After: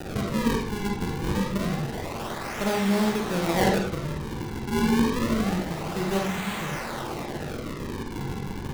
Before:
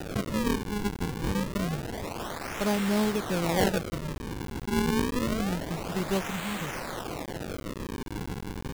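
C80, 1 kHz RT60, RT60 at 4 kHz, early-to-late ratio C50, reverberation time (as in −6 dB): 8.0 dB, 0.45 s, 0.35 s, 2.5 dB, 0.45 s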